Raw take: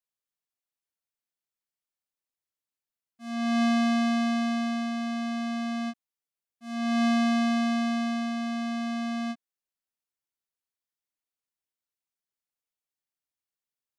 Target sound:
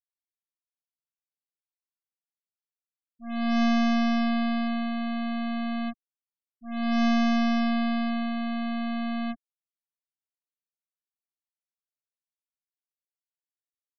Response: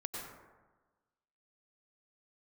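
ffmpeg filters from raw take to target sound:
-af "aeval=exprs='if(lt(val(0),0),0.447*val(0),val(0))':c=same,afftfilt=real='re*gte(hypot(re,im),0.0126)':imag='im*gte(hypot(re,im),0.0126)':win_size=1024:overlap=0.75,volume=1.5"

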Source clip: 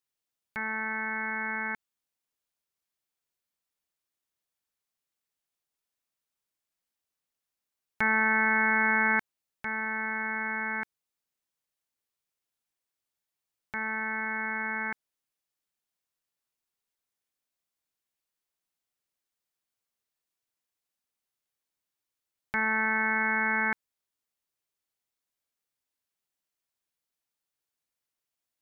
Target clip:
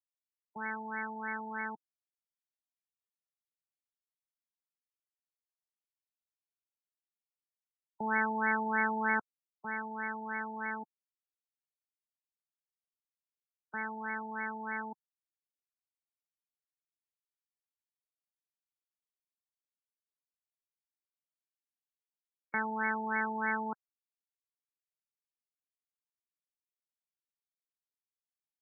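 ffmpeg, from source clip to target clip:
-filter_complex "[0:a]afftfilt=real='re*gte(hypot(re,im),0.0158)':imag='im*gte(hypot(re,im),0.0158)':win_size=1024:overlap=0.75,acrossover=split=160 2400:gain=0.141 1 0.158[s0][s1][s2];[s0][s1][s2]amix=inputs=3:normalize=0,afftfilt=real='re*lt(b*sr/1024,890*pow(2300/890,0.5+0.5*sin(2*PI*3.2*pts/sr)))':imag='im*lt(b*sr/1024,890*pow(2300/890,0.5+0.5*sin(2*PI*3.2*pts/sr)))':win_size=1024:overlap=0.75,volume=0.794"

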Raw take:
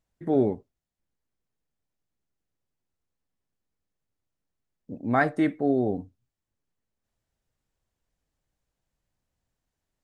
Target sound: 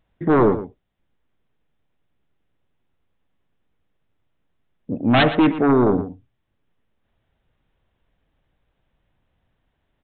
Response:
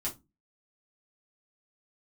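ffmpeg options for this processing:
-filter_complex "[0:a]aresample=8000,aeval=exprs='0.335*sin(PI/2*3.16*val(0)/0.335)':c=same,aresample=44100,asplit=2[s0][s1];[s1]adelay=116.6,volume=0.251,highshelf=f=4000:g=-2.62[s2];[s0][s2]amix=inputs=2:normalize=0,volume=0.841"

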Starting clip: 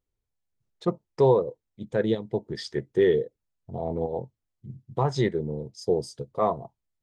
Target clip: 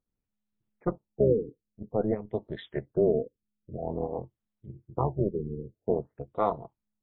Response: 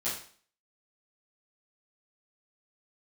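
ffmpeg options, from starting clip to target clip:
-af "tremolo=f=210:d=0.75,afftfilt=real='re*lt(b*sr/1024,470*pow(4300/470,0.5+0.5*sin(2*PI*0.5*pts/sr)))':imag='im*lt(b*sr/1024,470*pow(4300/470,0.5+0.5*sin(2*PI*0.5*pts/sr)))':win_size=1024:overlap=0.75"

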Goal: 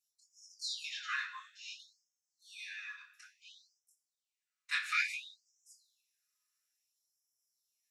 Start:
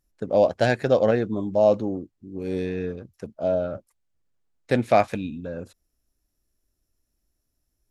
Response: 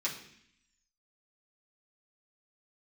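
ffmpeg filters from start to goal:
-filter_complex "[0:a]flanger=delay=20:depth=2.6:speed=0.75[s0];[1:a]atrim=start_sample=2205,asetrate=48510,aresample=44100[s1];[s0][s1]afir=irnorm=-1:irlink=0,afftfilt=real='re*gte(b*sr/1024,960*pow(5200/960,0.5+0.5*sin(2*PI*0.58*pts/sr)))':imag='im*gte(b*sr/1024,960*pow(5200/960,0.5+0.5*sin(2*PI*0.58*pts/sr)))':win_size=1024:overlap=0.75"

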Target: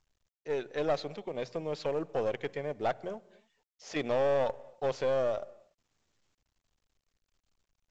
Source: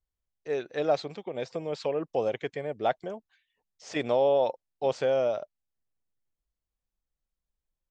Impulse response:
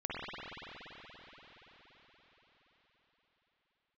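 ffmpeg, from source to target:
-filter_complex "[0:a]bandreject=f=60:t=h:w=6,bandreject=f=120:t=h:w=6,bandreject=f=180:t=h:w=6,aeval=exprs='0.224*(cos(1*acos(clip(val(0)/0.224,-1,1)))-cos(1*PI/2))+0.02*(cos(3*acos(clip(val(0)/0.224,-1,1)))-cos(3*PI/2))+0.0178*(cos(4*acos(clip(val(0)/0.224,-1,1)))-cos(4*PI/2))+0.0282*(cos(5*acos(clip(val(0)/0.224,-1,1)))-cos(5*PI/2))+0.00316*(cos(8*acos(clip(val(0)/0.224,-1,1)))-cos(8*PI/2))':c=same,asplit=2[s0][s1];[1:a]atrim=start_sample=2205,afade=t=out:st=0.34:d=0.01,atrim=end_sample=15435,highshelf=f=4200:g=-8[s2];[s1][s2]afir=irnorm=-1:irlink=0,volume=0.075[s3];[s0][s3]amix=inputs=2:normalize=0,volume=0.562" -ar 16000 -c:a pcm_mulaw

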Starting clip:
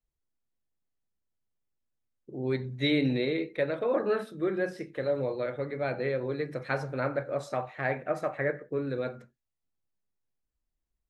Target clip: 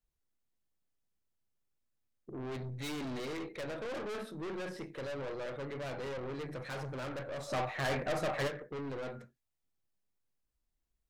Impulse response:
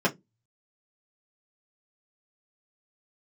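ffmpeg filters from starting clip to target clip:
-filter_complex "[0:a]aeval=exprs='(tanh(89.1*val(0)+0.3)-tanh(0.3))/89.1':c=same,asplit=3[s0][s1][s2];[s0]afade=t=out:st=7.48:d=0.02[s3];[s1]acontrast=88,afade=t=in:st=7.48:d=0.02,afade=t=out:st=8.47:d=0.02[s4];[s2]afade=t=in:st=8.47:d=0.02[s5];[s3][s4][s5]amix=inputs=3:normalize=0,volume=1.12"

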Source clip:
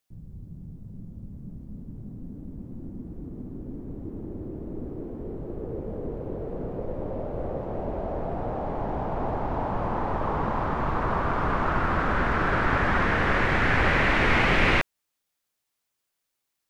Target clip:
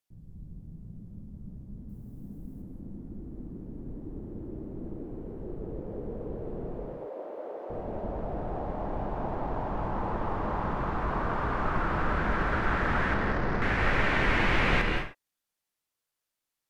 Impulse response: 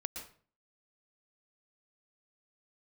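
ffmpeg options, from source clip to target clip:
-filter_complex "[0:a]asettb=1/sr,asplit=3[s0][s1][s2];[s0]atrim=end=1.894[s3];[s1]atrim=start=1.89:end=2.62,asetpts=PTS-STARTPTS,afade=t=in:d=0.004:c=qsin,afade=t=out:st=0.726:d=0.004:c=qsin,aemphasis=mode=production:type=50fm[s4];[s2]atrim=start=2.616[s5];[s3][s4]acrossfade=d=0.004:c1=hsin:c2=qsin[s6];[s6][s5]acrossfade=d=0.004:c1=qsin:c2=hsin,asettb=1/sr,asplit=3[s7][s8][s9];[s7]atrim=end=6.784[s10];[s8]atrim=start=6.78:end=7.7,asetpts=PTS-STARTPTS,afade=t=in:d=0.004:c=qsin,afade=t=out:st=0.916:d=0.004:c=qsin,highpass=f=360:w=0.5412,highpass=f=360:w=1.3066[s11];[s9]atrim=start=7.696[s12];[s10][s11]acrossfade=d=0.004:c1=hsin:c2=qsin[s13];[s13][s12]acrossfade=d=0.004:c1=qsin:c2=hsin,asettb=1/sr,asplit=3[s14][s15][s16];[s14]atrim=end=13.144[s17];[s15]atrim=start=13.14:end=13.62,asetpts=PTS-STARTPTS,afade=t=in:d=0.004:c=qsin,afade=t=out:st=0.476:d=0.004:c=qsin,adynamicsmooth=sensitivity=0.5:basefreq=730[s18];[s16]atrim=start=13.616[s19];[s17][s18]acrossfade=d=0.004:c1=hsin:c2=qsin[s20];[s20][s19]acrossfade=d=0.004:c1=qsin:c2=hsin[s21];[1:a]atrim=start_sample=2205,afade=t=out:st=0.27:d=0.01,atrim=end_sample=12348,asetrate=29988,aresample=44100[s22];[s21][s22]afir=irnorm=-1:irlink=0,volume=0.501"

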